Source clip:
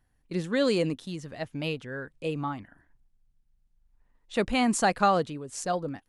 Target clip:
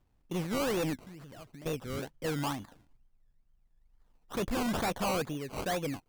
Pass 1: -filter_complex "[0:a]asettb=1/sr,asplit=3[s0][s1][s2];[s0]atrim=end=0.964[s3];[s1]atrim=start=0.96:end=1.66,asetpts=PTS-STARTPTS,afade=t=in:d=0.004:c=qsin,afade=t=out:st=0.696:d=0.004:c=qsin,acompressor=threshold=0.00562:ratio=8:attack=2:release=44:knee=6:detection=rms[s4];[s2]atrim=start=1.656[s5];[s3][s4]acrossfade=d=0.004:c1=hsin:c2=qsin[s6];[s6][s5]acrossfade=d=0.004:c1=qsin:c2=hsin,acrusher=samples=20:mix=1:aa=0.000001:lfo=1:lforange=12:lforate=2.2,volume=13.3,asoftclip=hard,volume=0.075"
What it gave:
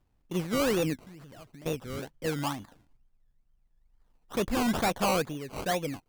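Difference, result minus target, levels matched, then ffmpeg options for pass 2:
overload inside the chain: distortion -5 dB
-filter_complex "[0:a]asettb=1/sr,asplit=3[s0][s1][s2];[s0]atrim=end=0.964[s3];[s1]atrim=start=0.96:end=1.66,asetpts=PTS-STARTPTS,afade=t=in:d=0.004:c=qsin,afade=t=out:st=0.696:d=0.004:c=qsin,acompressor=threshold=0.00562:ratio=8:attack=2:release=44:knee=6:detection=rms[s4];[s2]atrim=start=1.656[s5];[s3][s4]acrossfade=d=0.004:c1=hsin:c2=qsin[s6];[s6][s5]acrossfade=d=0.004:c1=qsin:c2=hsin,acrusher=samples=20:mix=1:aa=0.000001:lfo=1:lforange=12:lforate=2.2,volume=26.6,asoftclip=hard,volume=0.0376"

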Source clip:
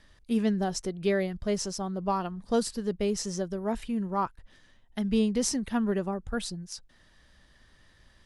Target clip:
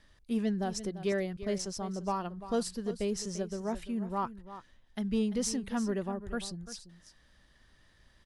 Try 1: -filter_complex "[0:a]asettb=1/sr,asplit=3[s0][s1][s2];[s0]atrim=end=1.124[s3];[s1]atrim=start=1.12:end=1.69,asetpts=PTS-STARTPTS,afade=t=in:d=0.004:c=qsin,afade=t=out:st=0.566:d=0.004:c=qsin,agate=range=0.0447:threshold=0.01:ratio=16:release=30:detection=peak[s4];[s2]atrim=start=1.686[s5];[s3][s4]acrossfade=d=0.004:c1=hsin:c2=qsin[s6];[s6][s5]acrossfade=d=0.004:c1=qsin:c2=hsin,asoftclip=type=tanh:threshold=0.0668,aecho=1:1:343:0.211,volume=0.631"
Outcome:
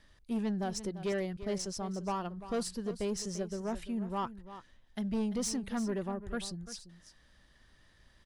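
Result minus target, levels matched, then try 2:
saturation: distortion +13 dB
-filter_complex "[0:a]asettb=1/sr,asplit=3[s0][s1][s2];[s0]atrim=end=1.124[s3];[s1]atrim=start=1.12:end=1.69,asetpts=PTS-STARTPTS,afade=t=in:d=0.004:c=qsin,afade=t=out:st=0.566:d=0.004:c=qsin,agate=range=0.0447:threshold=0.01:ratio=16:release=30:detection=peak[s4];[s2]atrim=start=1.686[s5];[s3][s4]acrossfade=d=0.004:c1=hsin:c2=qsin[s6];[s6][s5]acrossfade=d=0.004:c1=qsin:c2=hsin,asoftclip=type=tanh:threshold=0.188,aecho=1:1:343:0.211,volume=0.631"

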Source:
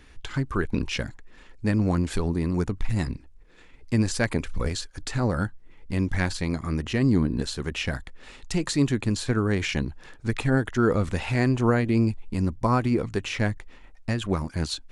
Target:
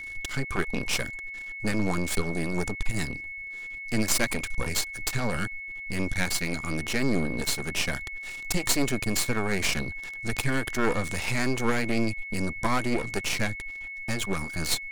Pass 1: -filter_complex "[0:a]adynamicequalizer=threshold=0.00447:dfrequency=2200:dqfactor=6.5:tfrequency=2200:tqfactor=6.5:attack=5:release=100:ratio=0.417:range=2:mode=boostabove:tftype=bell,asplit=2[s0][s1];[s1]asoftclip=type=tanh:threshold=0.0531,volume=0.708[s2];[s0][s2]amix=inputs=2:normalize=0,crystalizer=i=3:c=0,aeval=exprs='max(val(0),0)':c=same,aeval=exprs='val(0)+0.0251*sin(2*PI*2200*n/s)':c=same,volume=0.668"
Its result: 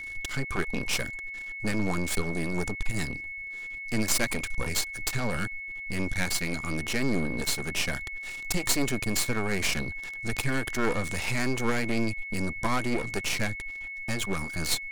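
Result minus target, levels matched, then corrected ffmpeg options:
saturation: distortion +10 dB
-filter_complex "[0:a]adynamicequalizer=threshold=0.00447:dfrequency=2200:dqfactor=6.5:tfrequency=2200:tqfactor=6.5:attack=5:release=100:ratio=0.417:range=2:mode=boostabove:tftype=bell,asplit=2[s0][s1];[s1]asoftclip=type=tanh:threshold=0.168,volume=0.708[s2];[s0][s2]amix=inputs=2:normalize=0,crystalizer=i=3:c=0,aeval=exprs='max(val(0),0)':c=same,aeval=exprs='val(0)+0.0251*sin(2*PI*2200*n/s)':c=same,volume=0.668"

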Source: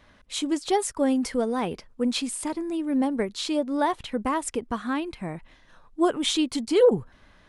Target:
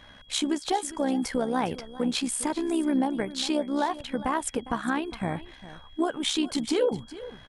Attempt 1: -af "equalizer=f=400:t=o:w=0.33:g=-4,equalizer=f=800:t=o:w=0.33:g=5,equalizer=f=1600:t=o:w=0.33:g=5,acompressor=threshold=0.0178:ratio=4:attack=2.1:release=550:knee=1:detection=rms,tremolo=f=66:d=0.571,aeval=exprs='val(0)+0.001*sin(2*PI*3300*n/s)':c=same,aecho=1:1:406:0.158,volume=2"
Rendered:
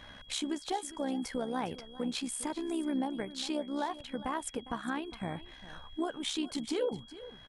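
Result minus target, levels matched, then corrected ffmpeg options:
compression: peak gain reduction +8 dB
-af "equalizer=f=400:t=o:w=0.33:g=-4,equalizer=f=800:t=o:w=0.33:g=5,equalizer=f=1600:t=o:w=0.33:g=5,acompressor=threshold=0.0596:ratio=4:attack=2.1:release=550:knee=1:detection=rms,tremolo=f=66:d=0.571,aeval=exprs='val(0)+0.001*sin(2*PI*3300*n/s)':c=same,aecho=1:1:406:0.158,volume=2"

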